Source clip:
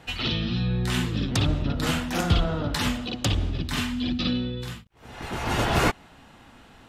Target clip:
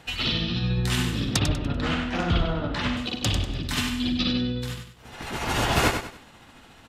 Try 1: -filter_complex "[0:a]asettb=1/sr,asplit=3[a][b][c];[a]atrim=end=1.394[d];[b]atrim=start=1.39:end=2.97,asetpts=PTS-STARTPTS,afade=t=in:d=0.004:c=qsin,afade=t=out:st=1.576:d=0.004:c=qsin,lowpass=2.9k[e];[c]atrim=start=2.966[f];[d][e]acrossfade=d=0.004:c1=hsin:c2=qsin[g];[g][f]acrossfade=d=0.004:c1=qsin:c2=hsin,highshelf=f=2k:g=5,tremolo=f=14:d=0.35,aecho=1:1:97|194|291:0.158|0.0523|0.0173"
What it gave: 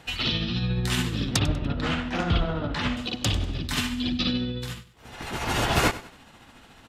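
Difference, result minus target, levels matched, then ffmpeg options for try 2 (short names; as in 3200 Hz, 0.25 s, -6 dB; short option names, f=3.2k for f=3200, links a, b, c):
echo-to-direct -9 dB
-filter_complex "[0:a]asettb=1/sr,asplit=3[a][b][c];[a]atrim=end=1.394[d];[b]atrim=start=1.39:end=2.97,asetpts=PTS-STARTPTS,afade=t=in:d=0.004:c=qsin,afade=t=out:st=1.576:d=0.004:c=qsin,lowpass=2.9k[e];[c]atrim=start=2.966[f];[d][e]acrossfade=d=0.004:c1=hsin:c2=qsin[g];[g][f]acrossfade=d=0.004:c1=qsin:c2=hsin,highshelf=f=2k:g=5,tremolo=f=14:d=0.35,aecho=1:1:97|194|291|388:0.447|0.147|0.0486|0.0161"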